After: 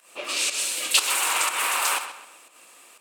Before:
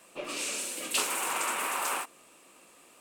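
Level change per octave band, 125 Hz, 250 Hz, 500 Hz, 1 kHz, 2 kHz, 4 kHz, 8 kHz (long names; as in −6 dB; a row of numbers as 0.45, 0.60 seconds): can't be measured, −3.0 dB, +1.5 dB, +5.5 dB, +8.0 dB, +11.0 dB, +8.0 dB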